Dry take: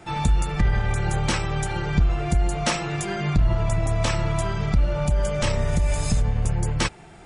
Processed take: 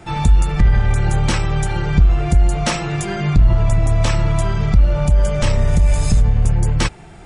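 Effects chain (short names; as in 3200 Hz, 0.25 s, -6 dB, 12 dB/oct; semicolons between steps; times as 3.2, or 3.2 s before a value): low shelf 140 Hz +7 dB; in parallel at -5.5 dB: soft clip -14 dBFS, distortion -12 dB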